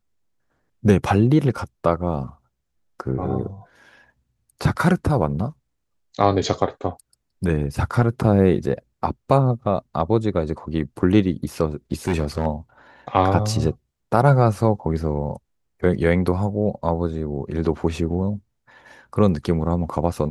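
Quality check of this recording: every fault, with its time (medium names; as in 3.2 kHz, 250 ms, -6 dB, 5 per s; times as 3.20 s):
12.08–12.47 s: clipped -15 dBFS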